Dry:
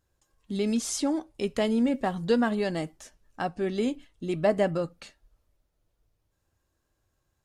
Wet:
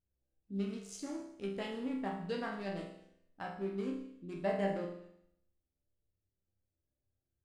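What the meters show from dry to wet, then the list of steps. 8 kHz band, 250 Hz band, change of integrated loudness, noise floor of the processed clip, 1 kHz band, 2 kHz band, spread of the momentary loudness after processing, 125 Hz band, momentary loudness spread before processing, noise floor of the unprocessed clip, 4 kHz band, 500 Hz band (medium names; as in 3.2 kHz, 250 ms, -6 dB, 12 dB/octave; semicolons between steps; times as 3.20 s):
under -15 dB, -11.5 dB, -11.5 dB, under -85 dBFS, -9.5 dB, -9.5 dB, 11 LU, -9.0 dB, 10 LU, -77 dBFS, -13.0 dB, -11.0 dB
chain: local Wiener filter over 41 samples; dynamic bell 2.2 kHz, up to +4 dB, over -46 dBFS, Q 0.92; chord resonator C2 sus4, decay 0.75 s; trim +5 dB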